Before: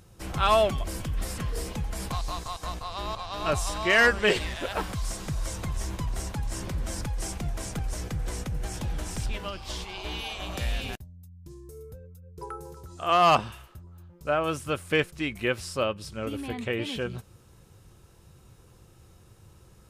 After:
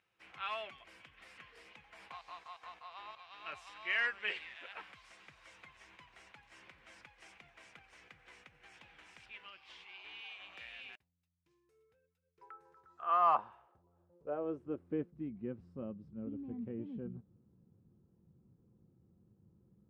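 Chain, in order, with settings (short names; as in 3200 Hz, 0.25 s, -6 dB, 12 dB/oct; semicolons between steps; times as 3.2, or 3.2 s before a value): high shelf 2600 Hz -11.5 dB; notch 610 Hz, Q 15; 1.81–3.11 dynamic EQ 810 Hz, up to +7 dB, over -48 dBFS, Q 1; band-pass sweep 2400 Hz -> 210 Hz, 12.3–15.25; gain -3.5 dB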